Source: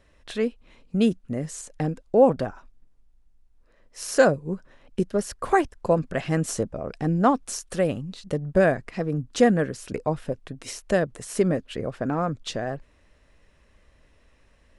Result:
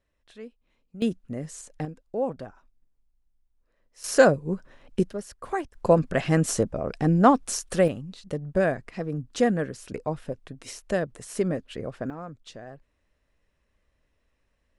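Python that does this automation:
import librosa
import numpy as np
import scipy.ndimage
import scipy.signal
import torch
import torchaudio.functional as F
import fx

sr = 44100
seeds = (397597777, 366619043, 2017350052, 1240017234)

y = fx.gain(x, sr, db=fx.steps((0.0, -17.0), (1.02, -4.5), (1.85, -11.0), (4.04, 1.0), (5.13, -9.0), (5.74, 2.5), (7.88, -4.0), (12.1, -13.0)))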